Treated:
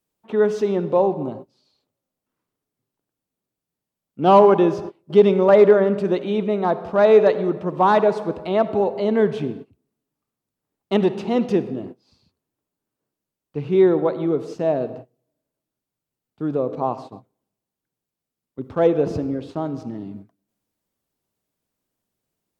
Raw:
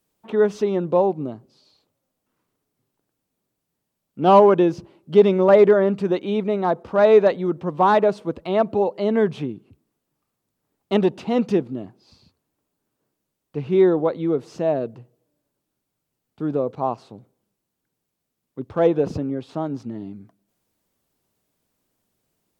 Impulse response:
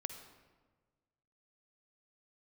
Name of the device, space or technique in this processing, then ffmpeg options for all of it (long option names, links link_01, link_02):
keyed gated reverb: -filter_complex "[0:a]asplit=3[link_01][link_02][link_03];[1:a]atrim=start_sample=2205[link_04];[link_02][link_04]afir=irnorm=-1:irlink=0[link_05];[link_03]apad=whole_len=996357[link_06];[link_05][link_06]sidechaingate=range=-32dB:threshold=-39dB:ratio=16:detection=peak,volume=4.5dB[link_07];[link_01][link_07]amix=inputs=2:normalize=0,volume=-7dB"